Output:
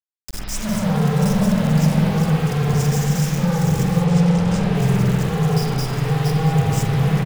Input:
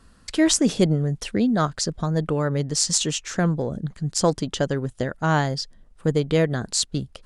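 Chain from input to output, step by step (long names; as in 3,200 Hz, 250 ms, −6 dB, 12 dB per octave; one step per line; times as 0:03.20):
feedback delay that plays each chunk backwards 336 ms, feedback 43%, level −4 dB
brick-wall band-stop 220–4,800 Hz
downward expander −39 dBFS
de-essing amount 90%
log-companded quantiser 2 bits
double-tracking delay 45 ms −13 dB
spring reverb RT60 1.8 s, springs 46/56 ms, chirp 50 ms, DRR −8 dB
0:04.04–0:04.75: linearly interpolated sample-rate reduction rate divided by 3×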